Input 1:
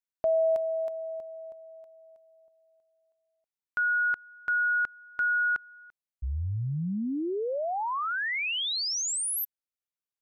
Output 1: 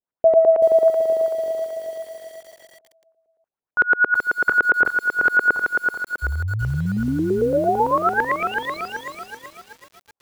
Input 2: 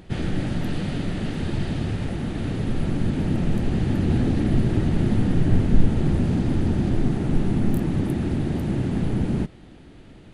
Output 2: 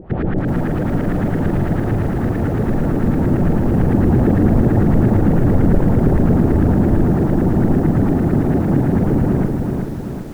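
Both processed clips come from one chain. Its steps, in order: added harmonics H 3 -37 dB, 5 -8 dB, 6 -38 dB, 7 -26 dB, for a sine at -4 dBFS; LFO low-pass saw up 8.9 Hz 410–1800 Hz; lo-fi delay 0.381 s, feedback 55%, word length 7-bit, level -4 dB; gain -2 dB

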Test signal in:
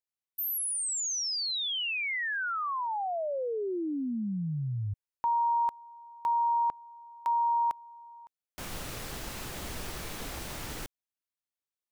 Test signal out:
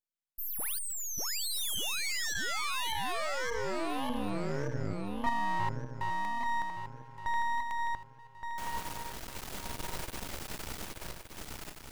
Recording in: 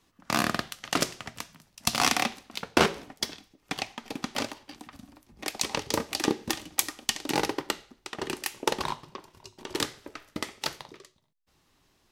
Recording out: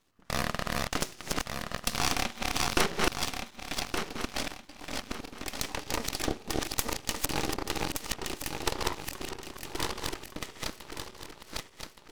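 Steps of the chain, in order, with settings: regenerating reverse delay 0.585 s, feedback 55%, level -1 dB; half-wave rectifier; gain -1 dB

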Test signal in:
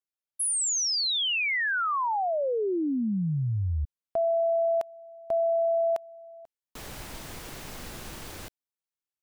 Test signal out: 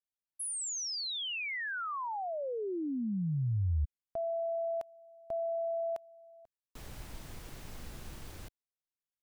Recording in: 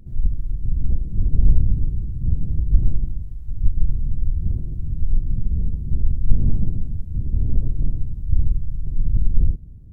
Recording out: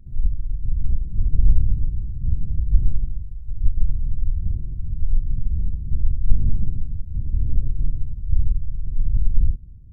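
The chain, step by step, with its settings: low shelf 160 Hz +10 dB; gain -10 dB

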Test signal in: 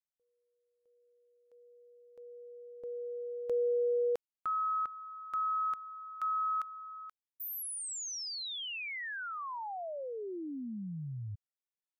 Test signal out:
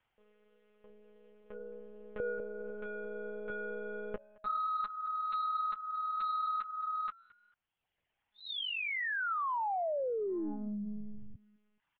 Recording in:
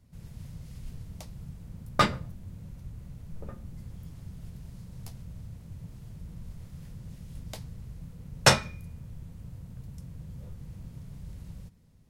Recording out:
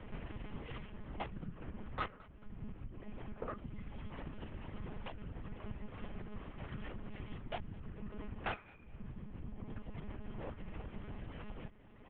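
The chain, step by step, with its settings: elliptic low-pass 3100 Hz, stop band 60 dB; reverb removal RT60 1.4 s; compressor 10:1, threshold -52 dBFS; overdrive pedal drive 29 dB, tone 1900 Hz, clips at -30 dBFS; on a send: frequency-shifting echo 0.214 s, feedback 38%, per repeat +75 Hz, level -24 dB; on the sum: monotone LPC vocoder at 8 kHz 210 Hz; gain +4.5 dB

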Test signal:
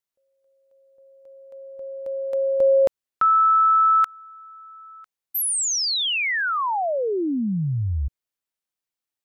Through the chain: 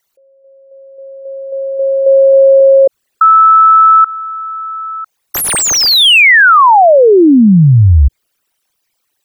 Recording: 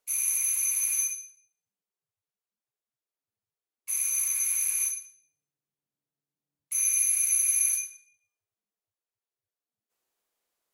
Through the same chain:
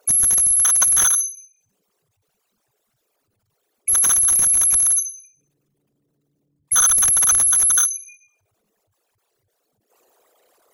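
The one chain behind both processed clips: formant sharpening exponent 3; maximiser +23 dB; slew limiter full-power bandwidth 2000 Hz; gain -1 dB

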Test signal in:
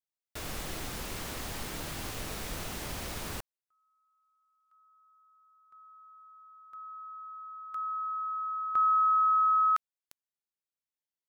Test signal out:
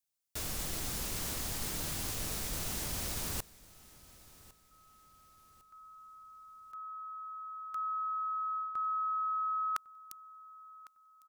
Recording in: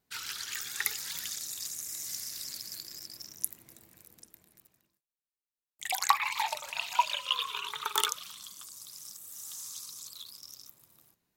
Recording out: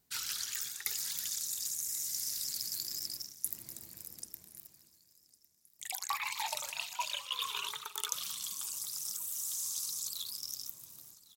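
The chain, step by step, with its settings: tone controls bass +4 dB, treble +9 dB; reverse; compressor 10:1, threshold -33 dBFS; reverse; feedback echo 1.104 s, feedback 36%, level -21 dB

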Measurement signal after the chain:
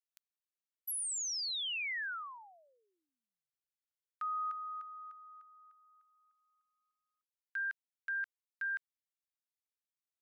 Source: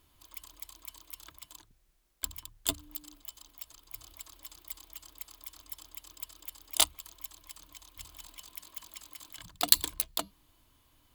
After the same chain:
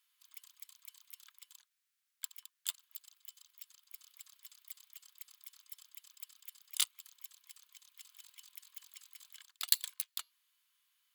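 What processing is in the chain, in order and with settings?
HPF 1400 Hz 24 dB/oct; gain -7 dB

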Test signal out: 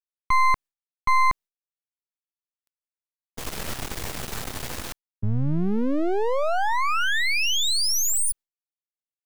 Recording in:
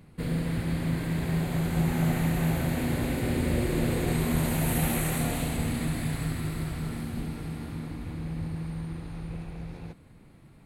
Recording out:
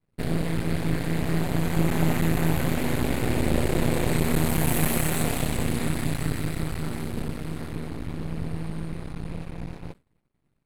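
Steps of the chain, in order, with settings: half-wave rectifier; expander -40 dBFS; gain +7 dB

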